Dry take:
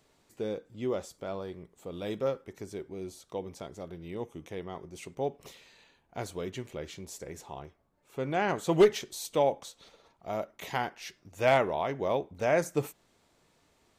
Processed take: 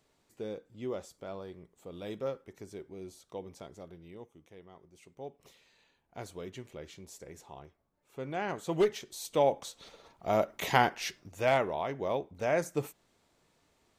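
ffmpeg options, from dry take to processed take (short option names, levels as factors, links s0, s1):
-af "volume=6.31,afade=t=out:st=3.73:d=0.61:silence=0.354813,afade=t=in:st=5:d=1.19:silence=0.398107,afade=t=in:st=9.02:d=1.5:silence=0.223872,afade=t=out:st=11.03:d=0.42:silence=0.316228"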